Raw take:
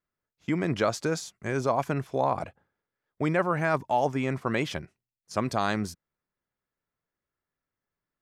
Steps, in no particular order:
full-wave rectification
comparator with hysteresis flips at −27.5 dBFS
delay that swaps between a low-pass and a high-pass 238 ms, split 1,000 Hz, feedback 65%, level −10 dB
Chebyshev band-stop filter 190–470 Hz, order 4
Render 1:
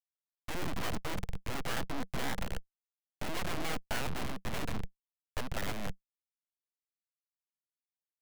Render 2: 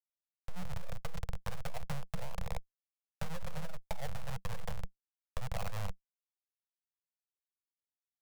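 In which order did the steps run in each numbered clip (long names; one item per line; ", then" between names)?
delay that swaps between a low-pass and a high-pass, then comparator with hysteresis, then Chebyshev band-stop filter, then full-wave rectification
delay that swaps between a low-pass and a high-pass, then comparator with hysteresis, then full-wave rectification, then Chebyshev band-stop filter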